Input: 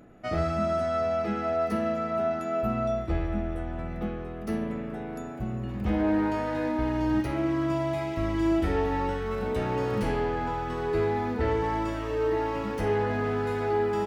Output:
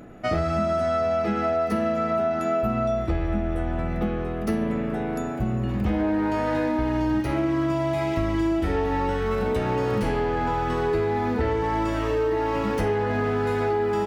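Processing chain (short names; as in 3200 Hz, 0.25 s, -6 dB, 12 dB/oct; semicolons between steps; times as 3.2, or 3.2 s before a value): compressor, threshold -29 dBFS, peak gain reduction 8.5 dB; gain +8.5 dB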